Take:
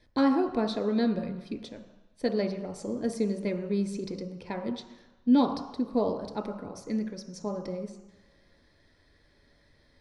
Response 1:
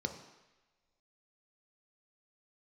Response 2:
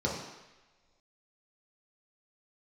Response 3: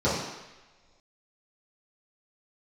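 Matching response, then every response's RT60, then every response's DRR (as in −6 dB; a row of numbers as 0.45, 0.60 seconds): 1; non-exponential decay, non-exponential decay, non-exponential decay; 4.5, −4.5, −11.5 decibels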